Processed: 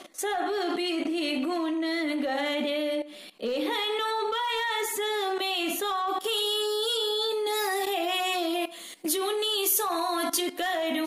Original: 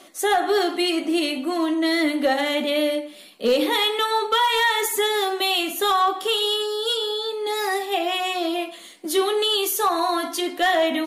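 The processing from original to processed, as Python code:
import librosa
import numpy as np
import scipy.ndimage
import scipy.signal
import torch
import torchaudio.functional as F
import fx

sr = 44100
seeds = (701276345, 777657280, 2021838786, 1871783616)

y = fx.rattle_buzz(x, sr, strikes_db=-35.0, level_db=-33.0)
y = fx.level_steps(y, sr, step_db=16)
y = fx.high_shelf(y, sr, hz=8000.0, db=fx.steps((0.0, -7.5), (6.07, 6.5)))
y = F.gain(torch.from_numpy(y), 4.0).numpy()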